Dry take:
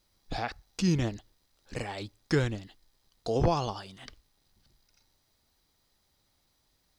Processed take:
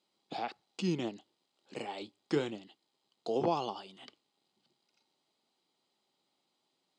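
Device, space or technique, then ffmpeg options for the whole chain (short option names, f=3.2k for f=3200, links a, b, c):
television speaker: -filter_complex "[0:a]asettb=1/sr,asplit=3[a][b][c];[a]atrim=end=1.164[d];[b]atrim=start=1.16:end=2.51,asetpts=PTS-STARTPTS,afade=t=in:d=0.004:c=qsin,afade=t=out:st=1.346:d=0.004:c=qsin,asplit=2[e][f];[f]adelay=27,volume=-13dB[g];[e][g]amix=inputs=2:normalize=0,atrim=end_sample=59535[h];[c]atrim=start=2.506[i];[d][h]acrossfade=d=0.004:c1=hsin:c2=qsin[j];[j][i]acrossfade=d=0.004:c1=qsin:c2=hsin,highpass=f=180:w=0.5412,highpass=f=180:w=1.3066,equalizer=f=370:t=q:w=4:g=5,equalizer=f=820:t=q:w=4:g=4,equalizer=f=1.7k:t=q:w=4:g=-8,equalizer=f=3k:t=q:w=4:g=5,equalizer=f=5.8k:t=q:w=4:g=-9,lowpass=f=8.3k:w=0.5412,lowpass=f=8.3k:w=1.3066,volume=-5dB"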